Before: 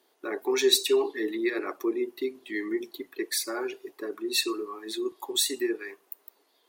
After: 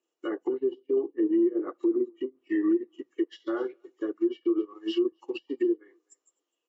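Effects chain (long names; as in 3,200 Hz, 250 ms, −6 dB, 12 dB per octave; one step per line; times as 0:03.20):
hearing-aid frequency compression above 1,700 Hz 1.5 to 1
low-shelf EQ 420 Hz +6 dB
treble cut that deepens with the level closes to 400 Hz, closed at −21.5 dBFS
tilt shelving filter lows −3.5 dB, about 1,500 Hz
hollow resonant body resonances 330/500/1,200/2,900 Hz, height 12 dB, ringing for 60 ms
on a send: single-tap delay 253 ms −22 dB
on the sum: brickwall limiter −20 dBFS, peak gain reduction 9.5 dB
expander for the loud parts 2.5 to 1, over −39 dBFS
level +3 dB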